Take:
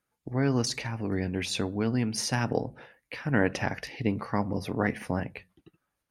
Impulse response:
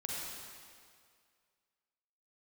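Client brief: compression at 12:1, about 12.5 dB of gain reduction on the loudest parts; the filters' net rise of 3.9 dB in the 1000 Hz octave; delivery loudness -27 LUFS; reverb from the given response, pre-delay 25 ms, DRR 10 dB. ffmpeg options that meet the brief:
-filter_complex "[0:a]equalizer=f=1k:t=o:g=5,acompressor=threshold=-31dB:ratio=12,asplit=2[a][b];[1:a]atrim=start_sample=2205,adelay=25[c];[b][c]afir=irnorm=-1:irlink=0,volume=-12dB[d];[a][d]amix=inputs=2:normalize=0,volume=10dB"

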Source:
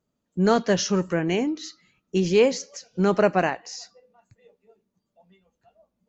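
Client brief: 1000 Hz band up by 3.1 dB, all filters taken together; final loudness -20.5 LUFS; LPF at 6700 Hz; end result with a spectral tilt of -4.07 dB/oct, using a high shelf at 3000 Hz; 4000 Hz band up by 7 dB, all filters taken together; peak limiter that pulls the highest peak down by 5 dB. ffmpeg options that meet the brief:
-af "lowpass=6.7k,equalizer=f=1k:t=o:g=3.5,highshelf=f=3k:g=6,equalizer=f=4k:t=o:g=5,volume=2.5dB,alimiter=limit=-7dB:level=0:latency=1"

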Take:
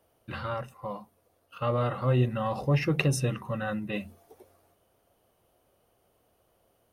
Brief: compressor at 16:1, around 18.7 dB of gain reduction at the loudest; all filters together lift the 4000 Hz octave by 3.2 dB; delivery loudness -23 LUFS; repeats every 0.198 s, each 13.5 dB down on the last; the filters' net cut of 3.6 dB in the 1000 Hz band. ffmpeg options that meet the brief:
-af "equalizer=f=1k:t=o:g=-5,equalizer=f=4k:t=o:g=5,acompressor=threshold=-38dB:ratio=16,aecho=1:1:198|396:0.211|0.0444,volume=20.5dB"

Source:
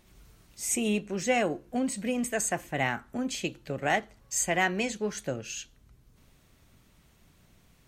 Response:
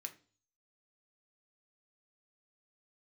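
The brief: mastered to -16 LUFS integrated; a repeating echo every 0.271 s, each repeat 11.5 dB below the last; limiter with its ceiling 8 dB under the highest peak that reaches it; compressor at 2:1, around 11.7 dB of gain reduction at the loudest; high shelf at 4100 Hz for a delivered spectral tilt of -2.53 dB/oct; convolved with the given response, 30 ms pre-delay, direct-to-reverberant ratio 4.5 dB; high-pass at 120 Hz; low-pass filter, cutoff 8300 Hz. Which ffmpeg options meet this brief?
-filter_complex "[0:a]highpass=120,lowpass=8.3k,highshelf=f=4.1k:g=8.5,acompressor=threshold=-42dB:ratio=2,alimiter=level_in=6dB:limit=-24dB:level=0:latency=1,volume=-6dB,aecho=1:1:271|542|813:0.266|0.0718|0.0194,asplit=2[a][b];[1:a]atrim=start_sample=2205,adelay=30[c];[b][c]afir=irnorm=-1:irlink=0,volume=-0.5dB[d];[a][d]amix=inputs=2:normalize=0,volume=22.5dB"

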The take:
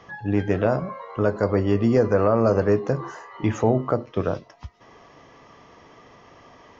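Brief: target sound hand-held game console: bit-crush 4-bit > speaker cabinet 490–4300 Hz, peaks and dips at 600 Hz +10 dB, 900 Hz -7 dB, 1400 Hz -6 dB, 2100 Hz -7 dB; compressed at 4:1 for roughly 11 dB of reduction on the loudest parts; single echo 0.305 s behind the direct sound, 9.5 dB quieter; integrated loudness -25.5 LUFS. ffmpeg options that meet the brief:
-af "acompressor=threshold=-28dB:ratio=4,aecho=1:1:305:0.335,acrusher=bits=3:mix=0:aa=0.000001,highpass=490,equalizer=f=600:t=q:w=4:g=10,equalizer=f=900:t=q:w=4:g=-7,equalizer=f=1.4k:t=q:w=4:g=-6,equalizer=f=2.1k:t=q:w=4:g=-7,lowpass=f=4.3k:w=0.5412,lowpass=f=4.3k:w=1.3066,volume=8dB"

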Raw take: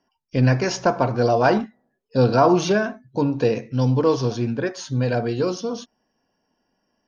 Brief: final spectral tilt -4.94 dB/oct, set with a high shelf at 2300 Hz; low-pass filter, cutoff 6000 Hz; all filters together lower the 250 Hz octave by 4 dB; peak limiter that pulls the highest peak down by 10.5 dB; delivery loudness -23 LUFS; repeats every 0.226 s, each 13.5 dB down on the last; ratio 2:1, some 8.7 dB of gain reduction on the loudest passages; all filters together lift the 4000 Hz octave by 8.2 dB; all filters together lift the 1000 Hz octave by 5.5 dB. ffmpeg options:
-af "lowpass=6k,equalizer=f=250:t=o:g=-6,equalizer=f=1k:t=o:g=7,highshelf=f=2.3k:g=3,equalizer=f=4k:t=o:g=8.5,acompressor=threshold=-24dB:ratio=2,alimiter=limit=-18dB:level=0:latency=1,aecho=1:1:226|452:0.211|0.0444,volume=5dB"

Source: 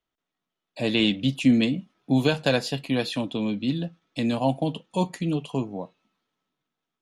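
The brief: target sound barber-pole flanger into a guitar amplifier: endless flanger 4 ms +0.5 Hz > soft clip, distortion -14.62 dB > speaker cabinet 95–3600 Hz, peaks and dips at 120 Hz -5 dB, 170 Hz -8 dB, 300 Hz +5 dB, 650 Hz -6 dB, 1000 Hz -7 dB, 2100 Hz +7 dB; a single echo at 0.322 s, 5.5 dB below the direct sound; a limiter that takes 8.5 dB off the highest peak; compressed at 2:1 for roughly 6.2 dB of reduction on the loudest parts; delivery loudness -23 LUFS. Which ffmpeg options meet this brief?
-filter_complex "[0:a]acompressor=threshold=-25dB:ratio=2,alimiter=limit=-21.5dB:level=0:latency=1,aecho=1:1:322:0.531,asplit=2[a][b];[b]adelay=4,afreqshift=0.5[c];[a][c]amix=inputs=2:normalize=1,asoftclip=threshold=-28dB,highpass=95,equalizer=f=120:t=q:w=4:g=-5,equalizer=f=170:t=q:w=4:g=-8,equalizer=f=300:t=q:w=4:g=5,equalizer=f=650:t=q:w=4:g=-6,equalizer=f=1k:t=q:w=4:g=-7,equalizer=f=2.1k:t=q:w=4:g=7,lowpass=f=3.6k:w=0.5412,lowpass=f=3.6k:w=1.3066,volume=13.5dB"

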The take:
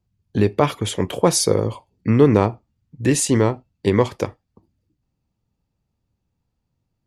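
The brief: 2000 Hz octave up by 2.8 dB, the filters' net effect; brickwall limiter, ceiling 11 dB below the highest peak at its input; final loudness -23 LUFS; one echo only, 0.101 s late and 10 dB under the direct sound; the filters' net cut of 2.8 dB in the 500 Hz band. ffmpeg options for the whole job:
-af "equalizer=f=500:t=o:g=-3.5,equalizer=f=2k:t=o:g=3.5,alimiter=limit=-14dB:level=0:latency=1,aecho=1:1:101:0.316,volume=3dB"

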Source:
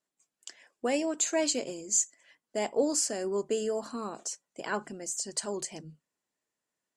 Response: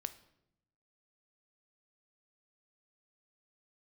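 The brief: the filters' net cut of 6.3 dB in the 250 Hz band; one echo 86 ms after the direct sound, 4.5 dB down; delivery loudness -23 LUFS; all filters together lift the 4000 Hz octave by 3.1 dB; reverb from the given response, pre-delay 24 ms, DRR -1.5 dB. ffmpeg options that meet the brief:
-filter_complex "[0:a]equalizer=f=250:t=o:g=-8.5,equalizer=f=4k:t=o:g=4,aecho=1:1:86:0.596,asplit=2[a][b];[1:a]atrim=start_sample=2205,adelay=24[c];[b][c]afir=irnorm=-1:irlink=0,volume=3.5dB[d];[a][d]amix=inputs=2:normalize=0,volume=3.5dB"

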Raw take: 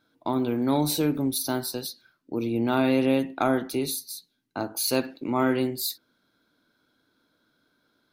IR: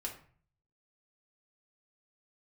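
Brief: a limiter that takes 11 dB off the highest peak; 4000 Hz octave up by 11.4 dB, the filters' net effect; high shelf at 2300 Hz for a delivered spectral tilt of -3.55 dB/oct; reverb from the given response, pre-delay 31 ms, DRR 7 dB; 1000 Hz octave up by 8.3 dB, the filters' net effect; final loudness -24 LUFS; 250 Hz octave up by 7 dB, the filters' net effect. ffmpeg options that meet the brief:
-filter_complex "[0:a]equalizer=f=250:t=o:g=7,equalizer=f=1k:t=o:g=8.5,highshelf=f=2.3k:g=8.5,equalizer=f=4k:t=o:g=5,alimiter=limit=-14dB:level=0:latency=1,asplit=2[a][b];[1:a]atrim=start_sample=2205,adelay=31[c];[b][c]afir=irnorm=-1:irlink=0,volume=-6.5dB[d];[a][d]amix=inputs=2:normalize=0,volume=-1dB"

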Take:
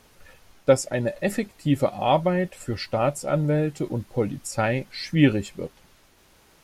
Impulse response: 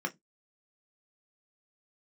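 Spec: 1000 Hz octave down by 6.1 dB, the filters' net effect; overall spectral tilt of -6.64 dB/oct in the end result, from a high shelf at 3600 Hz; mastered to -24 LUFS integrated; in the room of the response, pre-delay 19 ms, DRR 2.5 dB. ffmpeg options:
-filter_complex "[0:a]equalizer=f=1k:t=o:g=-8.5,highshelf=f=3.6k:g=-8.5,asplit=2[a][b];[1:a]atrim=start_sample=2205,adelay=19[c];[b][c]afir=irnorm=-1:irlink=0,volume=-7.5dB[d];[a][d]amix=inputs=2:normalize=0,volume=-0.5dB"

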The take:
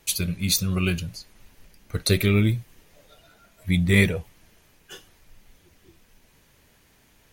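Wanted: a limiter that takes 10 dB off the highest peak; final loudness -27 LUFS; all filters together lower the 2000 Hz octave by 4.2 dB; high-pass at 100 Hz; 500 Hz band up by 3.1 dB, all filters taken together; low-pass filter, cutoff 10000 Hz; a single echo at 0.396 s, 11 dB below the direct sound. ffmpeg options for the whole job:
-af "highpass=100,lowpass=10k,equalizer=f=500:t=o:g=4.5,equalizer=f=2k:t=o:g=-5,alimiter=limit=-15.5dB:level=0:latency=1,aecho=1:1:396:0.282,volume=1.5dB"

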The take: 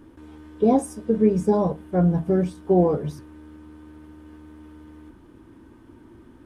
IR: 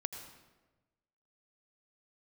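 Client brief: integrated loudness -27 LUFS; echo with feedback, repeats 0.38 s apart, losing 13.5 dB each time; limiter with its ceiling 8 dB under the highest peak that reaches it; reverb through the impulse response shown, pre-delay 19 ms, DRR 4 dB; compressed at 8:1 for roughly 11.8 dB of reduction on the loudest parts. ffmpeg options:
-filter_complex "[0:a]acompressor=threshold=-26dB:ratio=8,alimiter=level_in=0.5dB:limit=-24dB:level=0:latency=1,volume=-0.5dB,aecho=1:1:380|760:0.211|0.0444,asplit=2[a][b];[1:a]atrim=start_sample=2205,adelay=19[c];[b][c]afir=irnorm=-1:irlink=0,volume=-4dB[d];[a][d]amix=inputs=2:normalize=0,volume=7.5dB"

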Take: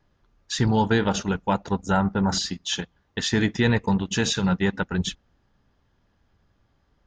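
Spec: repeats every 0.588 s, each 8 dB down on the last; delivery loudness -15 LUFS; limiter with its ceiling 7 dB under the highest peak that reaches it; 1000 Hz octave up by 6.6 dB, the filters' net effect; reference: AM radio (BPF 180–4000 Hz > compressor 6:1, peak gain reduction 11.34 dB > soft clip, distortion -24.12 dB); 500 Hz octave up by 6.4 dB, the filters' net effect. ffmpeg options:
-af "equalizer=f=500:t=o:g=6.5,equalizer=f=1k:t=o:g=6,alimiter=limit=-11dB:level=0:latency=1,highpass=180,lowpass=4k,aecho=1:1:588|1176|1764|2352|2940:0.398|0.159|0.0637|0.0255|0.0102,acompressor=threshold=-28dB:ratio=6,asoftclip=threshold=-19dB,volume=18.5dB"

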